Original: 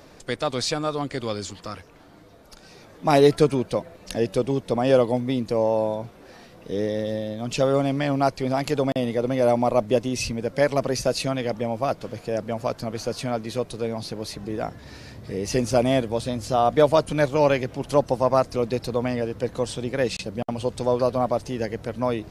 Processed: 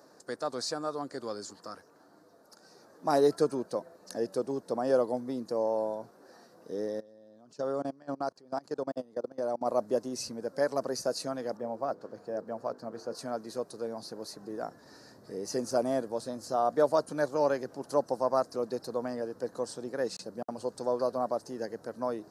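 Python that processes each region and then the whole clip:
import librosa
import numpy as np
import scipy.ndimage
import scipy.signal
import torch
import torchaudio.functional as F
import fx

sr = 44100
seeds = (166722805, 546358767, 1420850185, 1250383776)

y = fx.chain(x, sr, fx.lowpass(hz=8300.0, slope=12),
    fx.peak_eq(hz=2100.0, db=-4.0, octaves=0.24),
    fx.level_steps(step_db=23), at=(7.0, 9.66))
y = fx.chain(y, sr, fx.block_float(bits=7),
    fx.lowpass(hz=2000.0, slope=6),
    fx.hum_notches(base_hz=50, count=10), at=(11.57, 13.15))
y = scipy.signal.sosfilt(scipy.signal.butter(2, 250.0, 'highpass', fs=sr, output='sos'), y)
y = fx.band_shelf(y, sr, hz=2700.0, db=-15.5, octaves=1.0)
y = y * librosa.db_to_amplitude(-7.5)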